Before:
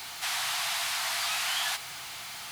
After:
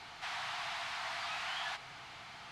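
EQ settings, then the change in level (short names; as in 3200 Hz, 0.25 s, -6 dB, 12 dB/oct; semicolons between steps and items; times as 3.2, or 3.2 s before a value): tape spacing loss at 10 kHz 25 dB; -2.5 dB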